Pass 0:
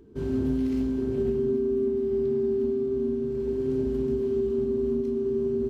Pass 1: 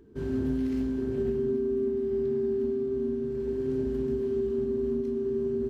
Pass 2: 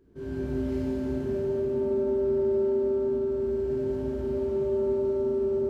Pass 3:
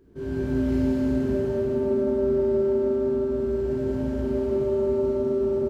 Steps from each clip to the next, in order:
bell 1700 Hz +5.5 dB 0.39 oct; gain -2.5 dB
shimmer reverb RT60 2.9 s, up +7 st, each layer -8 dB, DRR -8.5 dB; gain -8.5 dB
echo 0.188 s -6.5 dB; gain +4.5 dB

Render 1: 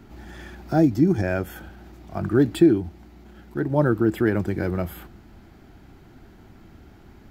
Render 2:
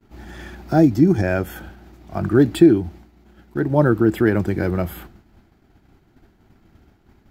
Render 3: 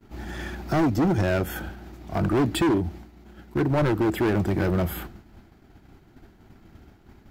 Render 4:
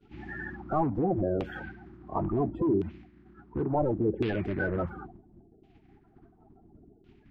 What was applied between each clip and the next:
expander -39 dBFS; gain +4 dB
in parallel at -0.5 dB: compressor, threshold -22 dBFS, peak gain reduction 14.5 dB; on the sum: hard clip -15.5 dBFS, distortion -6 dB; gain -3 dB
bin magnitudes rounded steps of 30 dB; LFO low-pass saw down 0.71 Hz 410–3000 Hz; gain -7 dB

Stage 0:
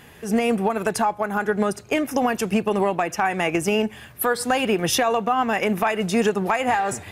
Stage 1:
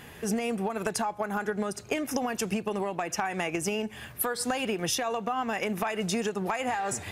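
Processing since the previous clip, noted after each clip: dynamic EQ 6200 Hz, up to +5 dB, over -42 dBFS, Q 0.77; compressor 10:1, threshold -26 dBFS, peak gain reduction 12 dB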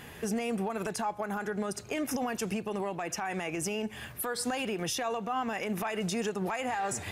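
limiter -23.5 dBFS, peak gain reduction 9.5 dB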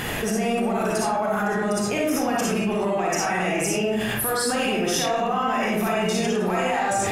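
reverb RT60 0.80 s, pre-delay 15 ms, DRR -6 dB; fast leveller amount 70%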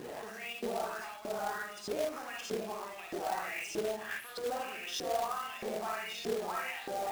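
LFO band-pass saw up 1.6 Hz 340–4400 Hz; companded quantiser 4-bit; gain -6.5 dB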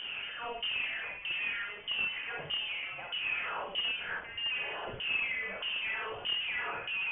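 in parallel at -5 dB: wrapped overs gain 37 dB; on the sum: inverted band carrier 3300 Hz

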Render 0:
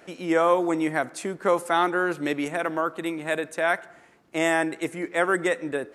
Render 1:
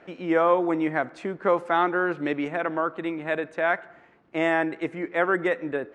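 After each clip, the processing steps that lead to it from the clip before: LPF 2700 Hz 12 dB/oct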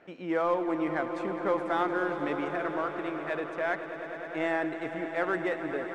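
in parallel at -10.5 dB: overloaded stage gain 25.5 dB; on the sum: swelling echo 0.103 s, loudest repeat 5, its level -14 dB; gain -8 dB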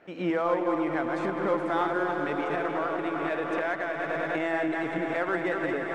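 regenerating reverse delay 0.151 s, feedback 44%, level -5 dB; recorder AGC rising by 37 dB/s

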